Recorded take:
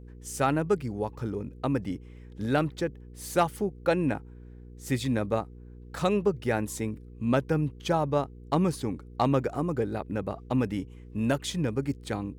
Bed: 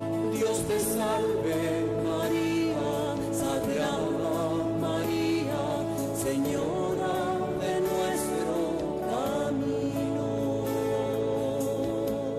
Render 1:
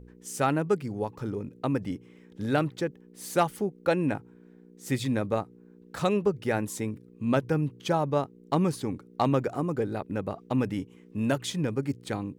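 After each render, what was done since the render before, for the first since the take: de-hum 60 Hz, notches 2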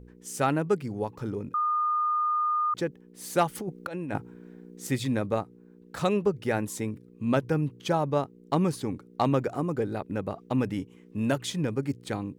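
1.54–2.74 s: bleep 1.22 kHz -23 dBFS; 3.55–4.87 s: compressor with a negative ratio -33 dBFS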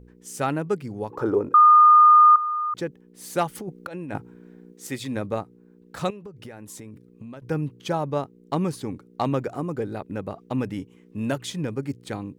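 1.10–2.36 s: high-order bell 700 Hz +14 dB 2.7 oct; 4.72–5.15 s: high-pass 440 Hz -> 190 Hz 6 dB/octave; 6.10–7.42 s: compression 16:1, threshold -36 dBFS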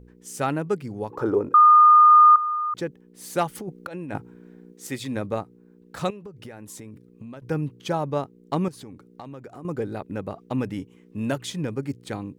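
2.11–2.56 s: treble shelf 5 kHz +10 dB; 8.68–9.65 s: compression 4:1, threshold -39 dBFS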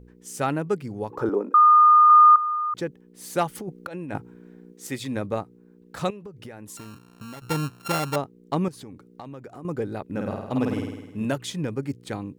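1.29–2.10 s: rippled Chebyshev high-pass 190 Hz, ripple 3 dB; 6.77–8.16 s: sorted samples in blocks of 32 samples; 10.04–11.25 s: flutter echo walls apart 8.8 m, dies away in 1 s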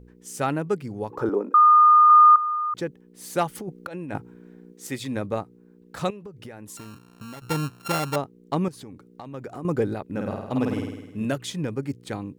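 9.34–9.94 s: gain +5 dB; 10.89–11.42 s: peaking EQ 910 Hz -7 dB 0.27 oct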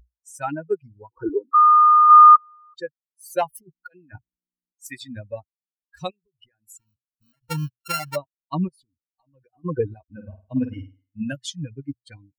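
expander on every frequency bin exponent 3; level rider gain up to 5.5 dB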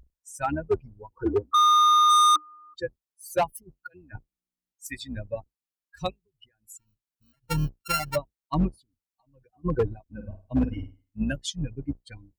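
octave divider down 2 oct, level -5 dB; hard clipper -17 dBFS, distortion -6 dB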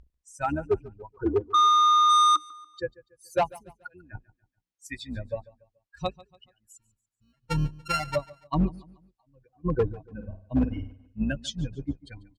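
distance through air 60 m; feedback delay 143 ms, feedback 40%, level -21 dB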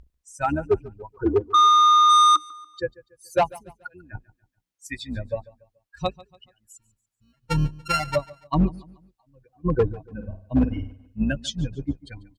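trim +4 dB

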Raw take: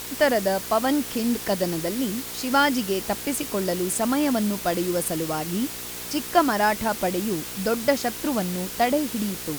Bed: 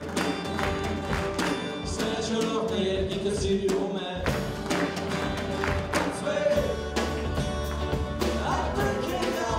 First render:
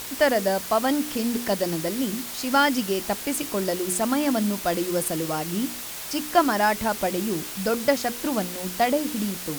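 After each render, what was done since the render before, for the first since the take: de-hum 60 Hz, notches 8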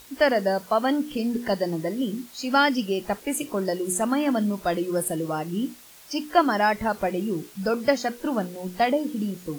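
noise print and reduce 14 dB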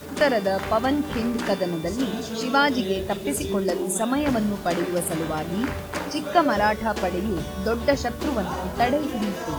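add bed -3.5 dB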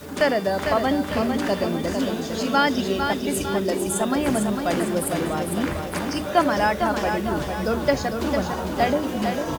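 feedback delay 452 ms, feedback 47%, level -6 dB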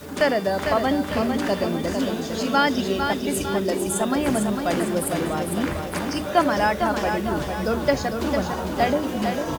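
no audible change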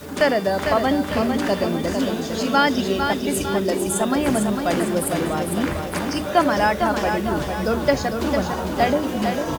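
trim +2 dB; peak limiter -3 dBFS, peak gain reduction 1 dB

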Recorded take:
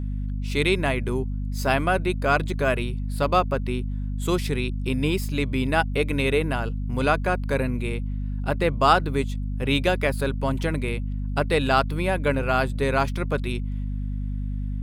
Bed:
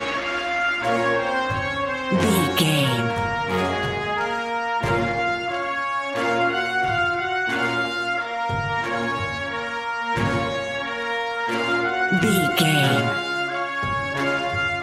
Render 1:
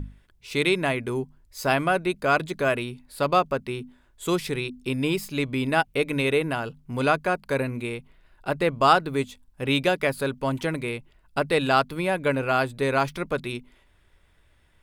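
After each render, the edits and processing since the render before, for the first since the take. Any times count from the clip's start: hum notches 50/100/150/200/250 Hz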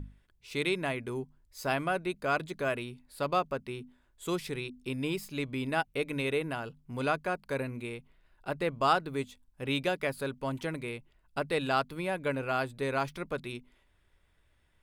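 trim -8 dB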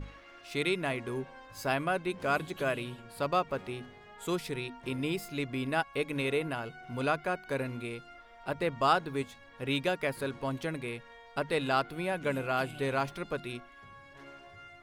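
add bed -28 dB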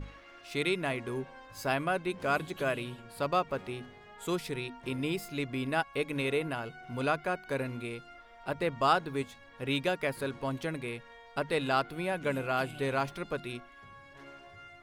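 no audible change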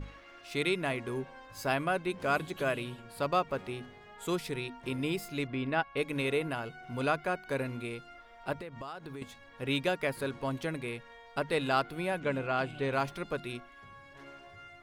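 5.47–5.97 s: low-pass 3.6 kHz; 8.54–9.22 s: compression 8:1, threshold -39 dBFS; 12.20–12.93 s: distance through air 84 m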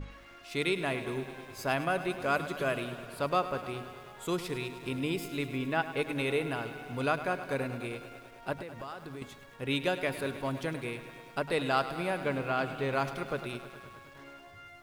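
bit-crushed delay 104 ms, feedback 80%, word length 9-bit, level -13 dB

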